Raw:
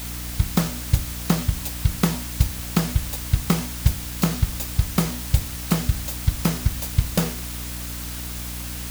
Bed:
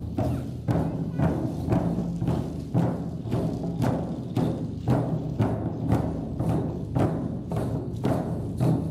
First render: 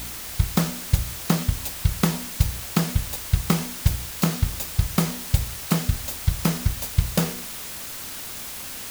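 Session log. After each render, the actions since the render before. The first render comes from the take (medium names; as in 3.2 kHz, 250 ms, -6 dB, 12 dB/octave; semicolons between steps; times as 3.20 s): de-hum 60 Hz, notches 8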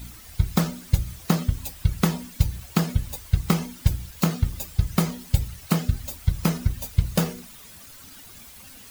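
noise reduction 13 dB, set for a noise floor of -35 dBFS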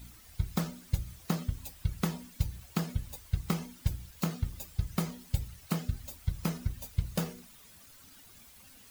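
trim -10 dB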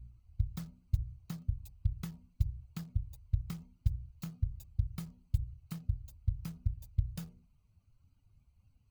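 local Wiener filter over 25 samples; FFT filter 120 Hz 0 dB, 220 Hz -17 dB, 500 Hz -23 dB, 1.7 kHz -14 dB, 4.2 kHz -11 dB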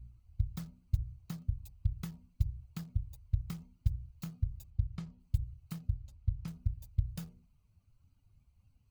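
4.70–5.20 s: distance through air 98 m; 5.93–6.48 s: distance through air 58 m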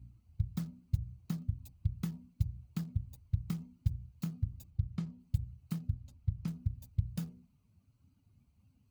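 high-pass 71 Hz; peaking EQ 240 Hz +10 dB 1.1 oct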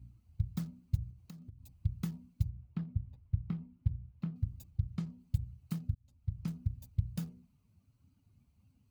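1.10–1.80 s: compression 3:1, threshold -50 dBFS; 2.49–4.36 s: distance through air 400 m; 5.95–6.44 s: fade in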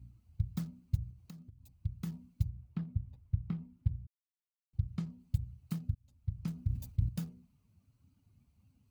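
1.42–2.07 s: gain -3.5 dB; 4.07–4.73 s: mute; 6.54–7.09 s: decay stretcher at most 100 dB/s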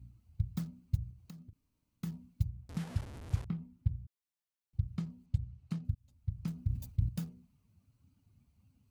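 1.53–2.03 s: room tone; 2.69–3.45 s: one-bit delta coder 64 kbps, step -40.5 dBFS; 5.26–5.85 s: distance through air 74 m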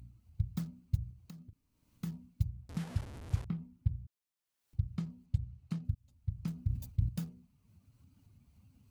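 upward compressor, threshold -55 dBFS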